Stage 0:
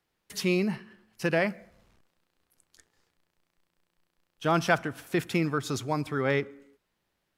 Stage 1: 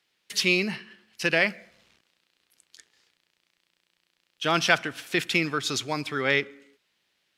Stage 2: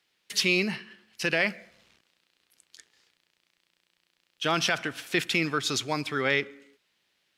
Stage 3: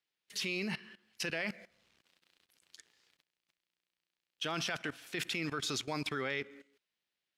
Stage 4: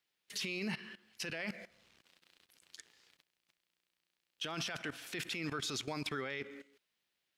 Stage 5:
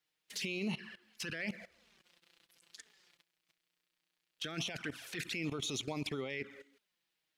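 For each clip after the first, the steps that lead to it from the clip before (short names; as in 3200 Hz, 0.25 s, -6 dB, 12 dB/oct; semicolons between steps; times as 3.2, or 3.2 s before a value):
weighting filter D
limiter -12 dBFS, peak gain reduction 7.5 dB
level quantiser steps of 18 dB
limiter -33 dBFS, peak gain reduction 10.5 dB; gain +4 dB
envelope flanger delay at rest 6.5 ms, full sweep at -35 dBFS; gain +2.5 dB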